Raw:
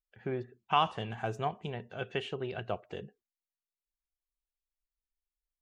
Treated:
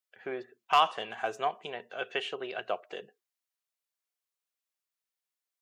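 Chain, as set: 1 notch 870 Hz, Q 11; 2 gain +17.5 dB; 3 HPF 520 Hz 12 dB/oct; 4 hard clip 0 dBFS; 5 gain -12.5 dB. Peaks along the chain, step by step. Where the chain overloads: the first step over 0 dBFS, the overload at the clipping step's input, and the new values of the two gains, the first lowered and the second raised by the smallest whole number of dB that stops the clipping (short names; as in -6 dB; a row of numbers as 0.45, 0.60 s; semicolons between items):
-14.5, +3.0, +3.5, 0.0, -12.5 dBFS; step 2, 3.5 dB; step 2 +13.5 dB, step 5 -8.5 dB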